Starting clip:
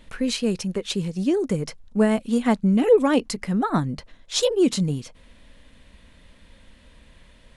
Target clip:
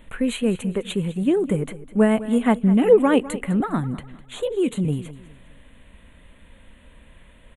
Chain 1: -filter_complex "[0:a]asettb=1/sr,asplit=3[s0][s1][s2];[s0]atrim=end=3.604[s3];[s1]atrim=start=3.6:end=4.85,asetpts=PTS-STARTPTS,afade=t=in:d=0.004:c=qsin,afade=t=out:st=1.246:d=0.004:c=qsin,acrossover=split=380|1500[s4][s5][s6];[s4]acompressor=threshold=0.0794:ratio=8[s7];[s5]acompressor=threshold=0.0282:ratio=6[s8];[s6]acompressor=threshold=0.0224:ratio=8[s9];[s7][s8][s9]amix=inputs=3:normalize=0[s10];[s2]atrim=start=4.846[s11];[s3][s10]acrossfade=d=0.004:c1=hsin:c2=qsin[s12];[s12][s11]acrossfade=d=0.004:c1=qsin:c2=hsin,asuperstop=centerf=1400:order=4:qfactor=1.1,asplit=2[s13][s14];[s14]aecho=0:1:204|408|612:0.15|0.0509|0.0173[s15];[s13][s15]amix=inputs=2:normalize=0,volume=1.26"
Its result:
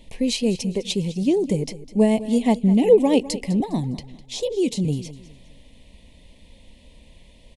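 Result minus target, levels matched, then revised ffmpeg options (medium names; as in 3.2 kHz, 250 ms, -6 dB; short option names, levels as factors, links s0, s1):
4 kHz band +5.5 dB
-filter_complex "[0:a]asettb=1/sr,asplit=3[s0][s1][s2];[s0]atrim=end=3.604[s3];[s1]atrim=start=3.6:end=4.85,asetpts=PTS-STARTPTS,afade=t=in:d=0.004:c=qsin,afade=t=out:st=1.246:d=0.004:c=qsin,acrossover=split=380|1500[s4][s5][s6];[s4]acompressor=threshold=0.0794:ratio=8[s7];[s5]acompressor=threshold=0.0282:ratio=6[s8];[s6]acompressor=threshold=0.0224:ratio=8[s9];[s7][s8][s9]amix=inputs=3:normalize=0[s10];[s2]atrim=start=4.846[s11];[s3][s10]acrossfade=d=0.004:c1=hsin:c2=qsin[s12];[s12][s11]acrossfade=d=0.004:c1=qsin:c2=hsin,asuperstop=centerf=5200:order=4:qfactor=1.1,asplit=2[s13][s14];[s14]aecho=0:1:204|408|612:0.15|0.0509|0.0173[s15];[s13][s15]amix=inputs=2:normalize=0,volume=1.26"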